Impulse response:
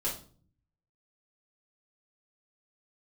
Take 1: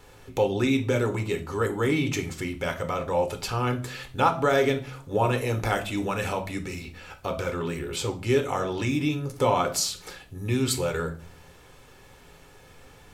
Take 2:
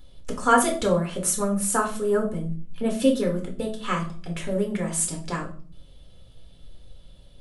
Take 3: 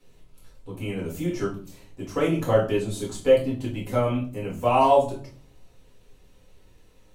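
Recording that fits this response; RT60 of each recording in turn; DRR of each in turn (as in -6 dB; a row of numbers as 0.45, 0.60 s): 3; 0.45, 0.45, 0.45 s; 5.5, -0.5, -6.0 dB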